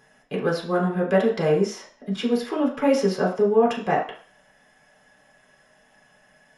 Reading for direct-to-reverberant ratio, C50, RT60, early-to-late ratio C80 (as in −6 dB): −4.0 dB, 8.0 dB, 0.45 s, 12.0 dB